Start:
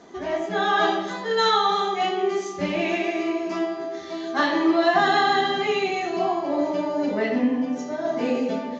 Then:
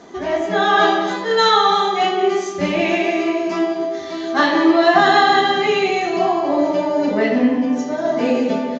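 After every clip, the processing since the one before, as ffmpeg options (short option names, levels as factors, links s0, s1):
-filter_complex "[0:a]asplit=2[s0][s1];[s1]adelay=192.4,volume=0.316,highshelf=f=4000:g=-4.33[s2];[s0][s2]amix=inputs=2:normalize=0,volume=2"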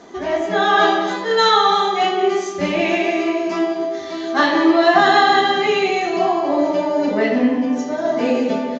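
-af "equalizer=f=130:w=1.3:g=-3.5"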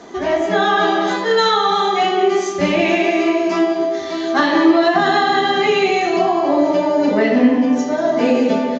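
-filter_complex "[0:a]acrossover=split=310[s0][s1];[s1]acompressor=threshold=0.141:ratio=5[s2];[s0][s2]amix=inputs=2:normalize=0,volume=1.58"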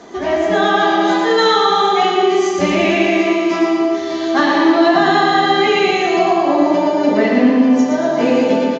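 -af "aecho=1:1:116|232|348|464|580|696|812|928:0.631|0.36|0.205|0.117|0.0666|0.038|0.0216|0.0123"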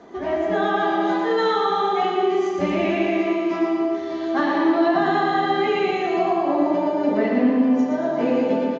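-af "lowpass=f=1700:p=1,volume=0.501"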